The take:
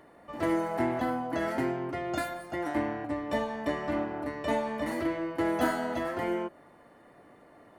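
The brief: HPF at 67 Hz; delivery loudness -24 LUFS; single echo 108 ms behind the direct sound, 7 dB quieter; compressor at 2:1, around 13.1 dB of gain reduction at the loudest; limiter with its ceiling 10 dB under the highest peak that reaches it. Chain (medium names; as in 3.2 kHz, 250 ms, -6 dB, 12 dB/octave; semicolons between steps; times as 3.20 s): high-pass 67 Hz; compression 2:1, threshold -47 dBFS; peak limiter -36 dBFS; delay 108 ms -7 dB; trim +20 dB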